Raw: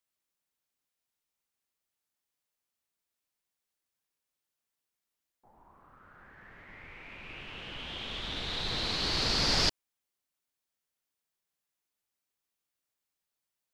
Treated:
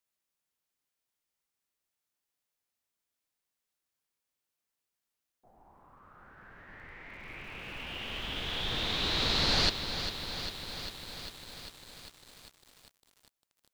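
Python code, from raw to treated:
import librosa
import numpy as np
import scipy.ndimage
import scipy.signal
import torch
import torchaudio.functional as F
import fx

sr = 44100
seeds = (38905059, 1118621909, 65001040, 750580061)

y = fx.formant_shift(x, sr, semitones=-2)
y = fx.echo_bbd(y, sr, ms=345, stages=4096, feedback_pct=49, wet_db=-21)
y = fx.echo_crushed(y, sr, ms=399, feedback_pct=80, bits=8, wet_db=-9.0)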